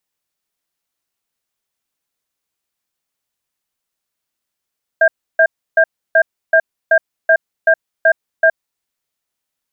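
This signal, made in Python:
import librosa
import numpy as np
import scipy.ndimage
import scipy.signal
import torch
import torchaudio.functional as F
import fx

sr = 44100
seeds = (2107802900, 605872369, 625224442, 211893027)

y = fx.cadence(sr, length_s=3.77, low_hz=650.0, high_hz=1600.0, on_s=0.07, off_s=0.31, level_db=-9.5)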